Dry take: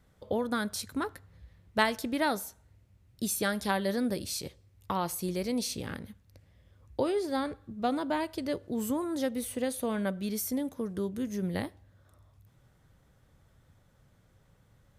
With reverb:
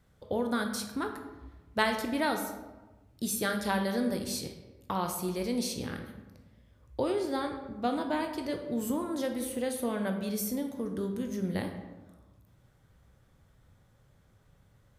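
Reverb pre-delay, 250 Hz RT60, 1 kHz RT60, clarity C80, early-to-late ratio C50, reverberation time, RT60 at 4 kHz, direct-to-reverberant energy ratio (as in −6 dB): 15 ms, 1.3 s, 1.1 s, 9.0 dB, 7.0 dB, 1.2 s, 0.65 s, 4.5 dB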